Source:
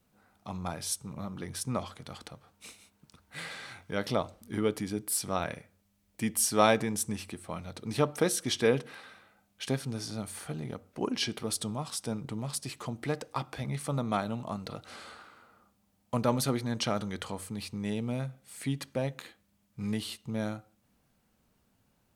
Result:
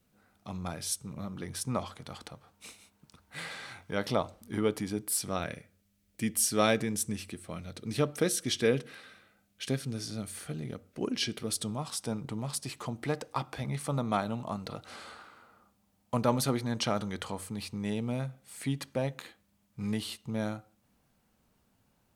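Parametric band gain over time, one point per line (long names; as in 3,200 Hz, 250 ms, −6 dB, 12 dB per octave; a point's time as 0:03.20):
parametric band 900 Hz 0.79 octaves
0:01.19 −5 dB
0:01.73 +1.5 dB
0:04.98 +1.5 dB
0:05.52 −9 dB
0:11.47 −9 dB
0:11.88 +1.5 dB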